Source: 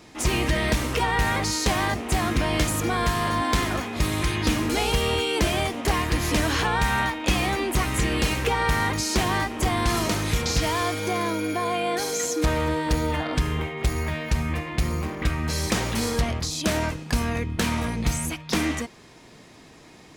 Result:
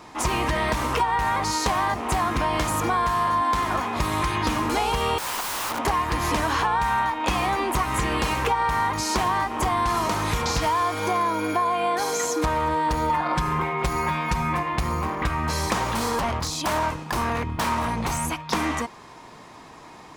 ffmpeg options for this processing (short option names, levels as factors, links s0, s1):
-filter_complex "[0:a]asettb=1/sr,asplit=3[s0][s1][s2];[s0]atrim=end=5.184[s3];[s1]atrim=start=5.18:end=5.79,asetpts=PTS-STARTPTS,afade=t=in:d=0.004:c=qsin,afade=t=out:st=0.606:d=0.004:c=qsin,aeval=exprs='(mod(21.1*val(0)+1,2)-1)/21.1':c=same[s4];[s2]atrim=start=5.786[s5];[s3][s4]acrossfade=d=0.004:c1=hsin:c2=qsin[s6];[s6][s5]acrossfade=d=0.004:c1=qsin:c2=hsin,asettb=1/sr,asplit=3[s7][s8][s9];[s7]atrim=end=13.094[s10];[s8]atrim=start=13.09:end=14.63,asetpts=PTS-STARTPTS,afade=t=in:d=0.004:c=qsin,afade=t=out:st=1.536:d=0.004:c=qsin,aecho=1:1:5.6:0.83,atrim=end_sample=67914[s11];[s9]atrim=start=14.626[s12];[s10][s11]acrossfade=d=0.004:c1=hsin:c2=qsin[s13];[s13][s12]acrossfade=d=0.004:c1=qsin:c2=hsin,asettb=1/sr,asplit=3[s14][s15][s16];[s14]atrim=end=15.844[s17];[s15]atrim=start=15.84:end=18.24,asetpts=PTS-STARTPTS,afade=t=in:d=0.004:c=qsin,afade=t=out:st=2.396:d=0.004:c=qsin,aeval=exprs='0.0841*(abs(mod(val(0)/0.0841+3,4)-2)-1)':c=same[s18];[s16]atrim=start=18.236[s19];[s17][s18]acrossfade=d=0.004:c1=hsin:c2=qsin[s20];[s20][s19]acrossfade=d=0.004:c1=qsin:c2=hsin,equalizer=f=1000:t=o:w=0.99:g=13,acompressor=threshold=0.1:ratio=6"